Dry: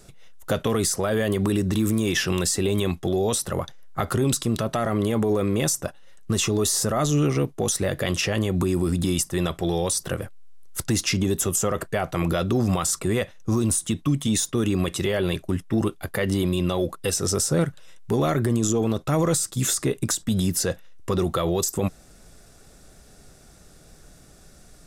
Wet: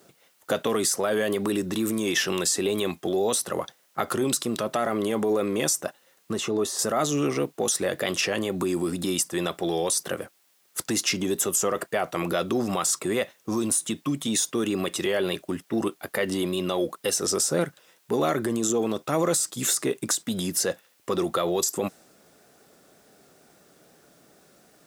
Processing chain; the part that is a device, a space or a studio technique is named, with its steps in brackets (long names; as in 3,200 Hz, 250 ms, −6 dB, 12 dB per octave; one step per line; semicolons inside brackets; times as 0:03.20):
plain cassette with noise reduction switched in (one half of a high-frequency compander decoder only; tape wow and flutter; white noise bed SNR 40 dB)
high-pass filter 260 Hz 12 dB per octave
0:06.33–0:06.79: high-shelf EQ 2,900 Hz −10.5 dB